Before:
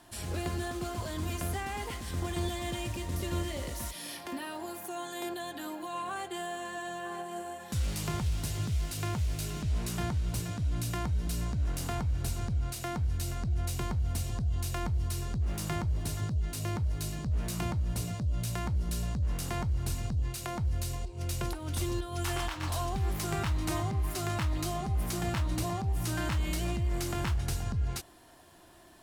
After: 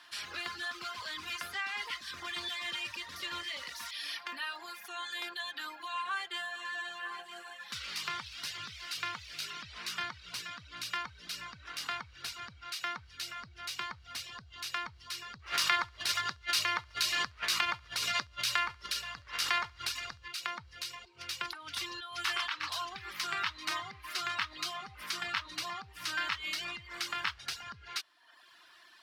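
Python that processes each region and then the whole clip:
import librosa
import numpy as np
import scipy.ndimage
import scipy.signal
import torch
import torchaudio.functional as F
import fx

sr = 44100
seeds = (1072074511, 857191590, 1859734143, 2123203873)

y = fx.chain(x, sr, fx.peak_eq(hz=180.0, db=-11.0, octaves=1.4),
    fx.echo_feedback(ms=69, feedback_pct=42, wet_db=-11.5),
    fx.env_flatten(amount_pct=100), at=(15.39, 20.28))
y = fx.dereverb_blind(y, sr, rt60_s=0.88)
y = fx.highpass(y, sr, hz=660.0, slope=6)
y = fx.band_shelf(y, sr, hz=2400.0, db=16.0, octaves=2.7)
y = F.gain(torch.from_numpy(y), -8.5).numpy()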